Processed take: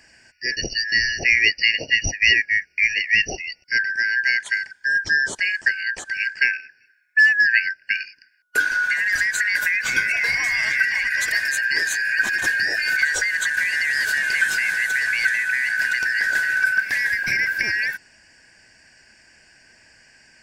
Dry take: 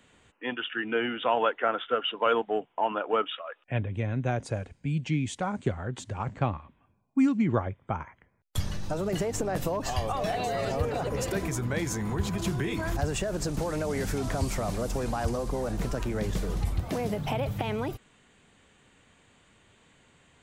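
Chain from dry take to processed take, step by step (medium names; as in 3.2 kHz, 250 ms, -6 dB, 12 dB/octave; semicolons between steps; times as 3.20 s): four frequency bands reordered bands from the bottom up 3142; trim +8 dB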